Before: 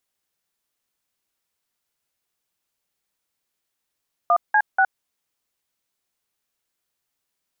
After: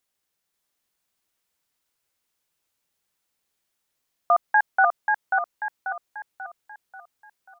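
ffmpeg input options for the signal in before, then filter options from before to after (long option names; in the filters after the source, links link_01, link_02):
-f lavfi -i "aevalsrc='0.158*clip(min(mod(t,0.242),0.065-mod(t,0.242))/0.002,0,1)*(eq(floor(t/0.242),0)*(sin(2*PI*697*mod(t,0.242))+sin(2*PI*1209*mod(t,0.242)))+eq(floor(t/0.242),1)*(sin(2*PI*852*mod(t,0.242))+sin(2*PI*1633*mod(t,0.242)))+eq(floor(t/0.242),2)*(sin(2*PI*770*mod(t,0.242))+sin(2*PI*1477*mod(t,0.242))))':duration=0.726:sample_rate=44100"
-af "aecho=1:1:538|1076|1614|2152|2690|3228:0.631|0.278|0.122|0.0537|0.0236|0.0104"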